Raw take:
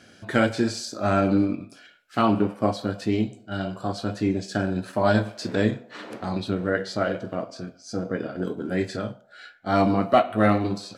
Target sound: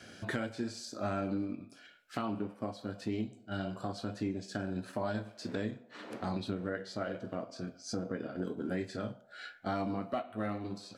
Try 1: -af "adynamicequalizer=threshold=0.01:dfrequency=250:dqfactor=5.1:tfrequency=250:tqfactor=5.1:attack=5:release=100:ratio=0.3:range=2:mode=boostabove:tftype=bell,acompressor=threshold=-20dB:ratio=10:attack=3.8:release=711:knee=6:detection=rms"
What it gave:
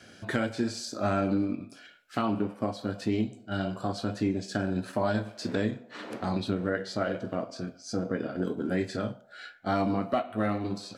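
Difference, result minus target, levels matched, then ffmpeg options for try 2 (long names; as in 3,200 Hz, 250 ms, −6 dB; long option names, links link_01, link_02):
downward compressor: peak gain reduction −7.5 dB
-af "adynamicequalizer=threshold=0.01:dfrequency=250:dqfactor=5.1:tfrequency=250:tqfactor=5.1:attack=5:release=100:ratio=0.3:range=2:mode=boostabove:tftype=bell,acompressor=threshold=-28.5dB:ratio=10:attack=3.8:release=711:knee=6:detection=rms"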